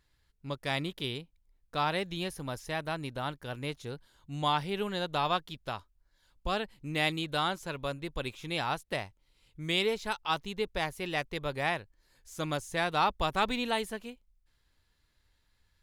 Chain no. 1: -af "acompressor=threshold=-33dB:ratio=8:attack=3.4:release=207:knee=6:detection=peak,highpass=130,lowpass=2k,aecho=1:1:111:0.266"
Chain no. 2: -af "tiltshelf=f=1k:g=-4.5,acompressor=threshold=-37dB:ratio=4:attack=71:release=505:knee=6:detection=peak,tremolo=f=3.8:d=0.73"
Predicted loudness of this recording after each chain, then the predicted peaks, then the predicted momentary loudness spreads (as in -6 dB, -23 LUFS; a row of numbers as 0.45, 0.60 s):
-42.5, -41.0 LUFS; -26.0, -19.5 dBFS; 7, 9 LU